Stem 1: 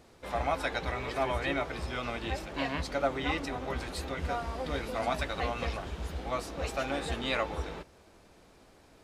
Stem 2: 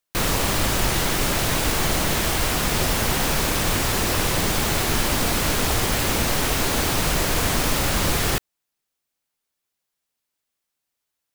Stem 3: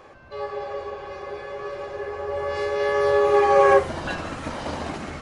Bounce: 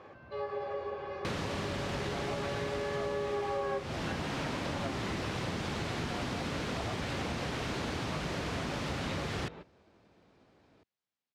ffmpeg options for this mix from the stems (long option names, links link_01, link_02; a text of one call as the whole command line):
ffmpeg -i stem1.wav -i stem2.wav -i stem3.wav -filter_complex "[0:a]adelay=1800,volume=-7dB[link_01];[1:a]adelay=1100,volume=-8.5dB[link_02];[2:a]volume=-5.5dB[link_03];[link_01][link_02][link_03]amix=inputs=3:normalize=0,highpass=110,lowpass=4400,lowshelf=frequency=240:gain=7.5,acompressor=threshold=-32dB:ratio=6" out.wav